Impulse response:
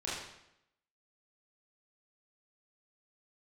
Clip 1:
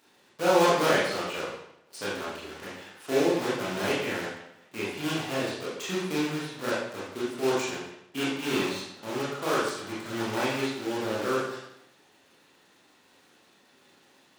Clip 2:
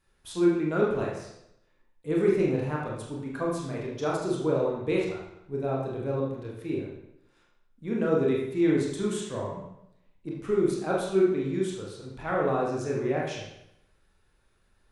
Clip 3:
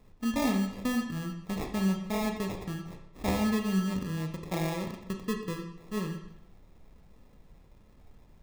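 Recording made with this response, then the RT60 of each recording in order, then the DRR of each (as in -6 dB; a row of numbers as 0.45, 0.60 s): 1; 0.80, 0.80, 0.80 s; -8.5, -4.0, 3.5 dB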